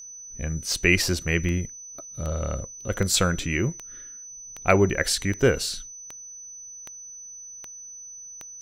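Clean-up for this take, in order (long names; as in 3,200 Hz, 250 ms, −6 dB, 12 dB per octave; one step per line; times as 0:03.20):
click removal
notch filter 6,000 Hz, Q 30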